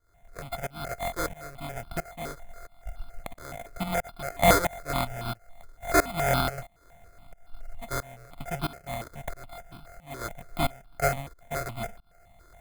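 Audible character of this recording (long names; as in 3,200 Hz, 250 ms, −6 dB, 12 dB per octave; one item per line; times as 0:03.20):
a buzz of ramps at a fixed pitch in blocks of 64 samples
tremolo saw up 1.5 Hz, depth 95%
aliases and images of a low sample rate 2,800 Hz, jitter 0%
notches that jump at a steady rate 7.1 Hz 750–1,900 Hz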